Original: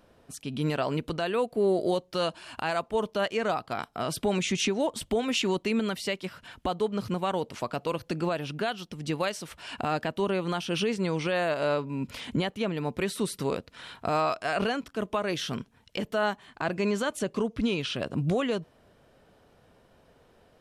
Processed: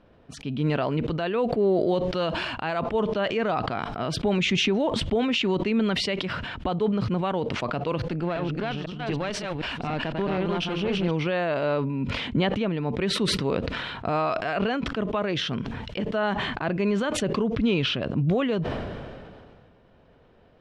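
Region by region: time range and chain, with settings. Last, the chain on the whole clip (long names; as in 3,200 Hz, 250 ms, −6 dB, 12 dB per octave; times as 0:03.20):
0:08.10–0:11.11: delay that plays each chunk backwards 253 ms, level −2 dB + tube saturation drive 21 dB, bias 0.6
whole clip: Chebyshev low-pass filter 3,100 Hz, order 2; low-shelf EQ 450 Hz +5.5 dB; level that may fall only so fast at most 27 dB per second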